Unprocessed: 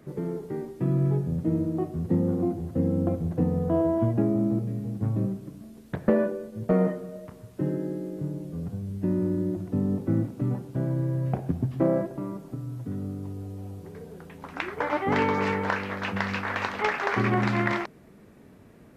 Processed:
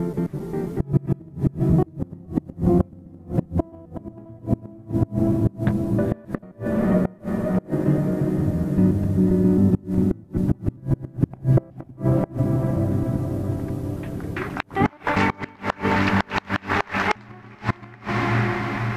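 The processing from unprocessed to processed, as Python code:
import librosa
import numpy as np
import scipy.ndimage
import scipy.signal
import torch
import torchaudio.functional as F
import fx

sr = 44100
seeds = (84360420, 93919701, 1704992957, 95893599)

y = fx.block_reorder(x, sr, ms=133.0, group=3)
y = fx.low_shelf(y, sr, hz=69.0, db=12.0)
y = fx.cheby_harmonics(y, sr, harmonics=(6, 7), levels_db=(-35, -44), full_scale_db=-9.5)
y = fx.echo_diffused(y, sr, ms=481, feedback_pct=62, wet_db=-5)
y = fx.gate_flip(y, sr, shuts_db=-14.0, range_db=-28)
y = fx.peak_eq(y, sr, hz=470.0, db=-9.0, octaves=0.31)
y = y * 10.0 ** (7.5 / 20.0)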